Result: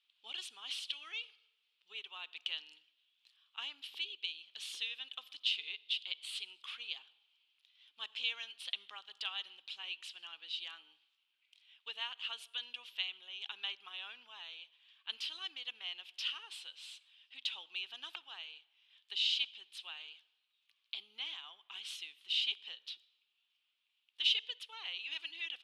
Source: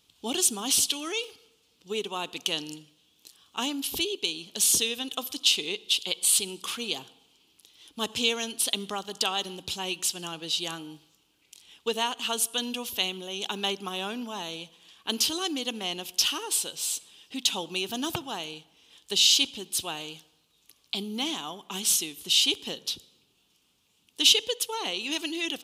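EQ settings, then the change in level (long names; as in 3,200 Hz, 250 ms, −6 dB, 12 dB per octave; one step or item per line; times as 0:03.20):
flat-topped band-pass 5,300 Hz, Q 0.61
high-frequency loss of the air 460 metres
0.0 dB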